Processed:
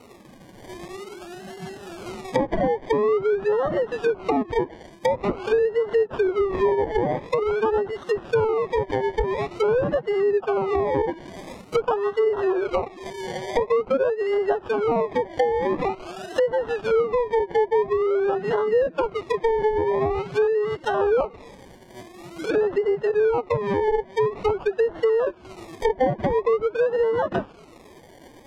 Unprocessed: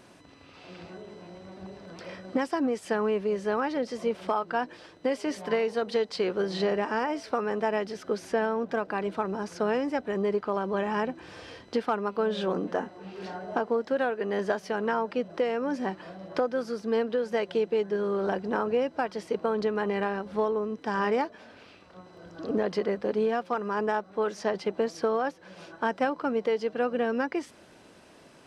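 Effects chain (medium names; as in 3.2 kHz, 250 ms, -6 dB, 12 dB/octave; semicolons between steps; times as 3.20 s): formant-preserving pitch shift +12 st; decimation with a swept rate 26×, swing 60% 0.47 Hz; low-pass that closes with the level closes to 990 Hz, closed at -25 dBFS; trim +7.5 dB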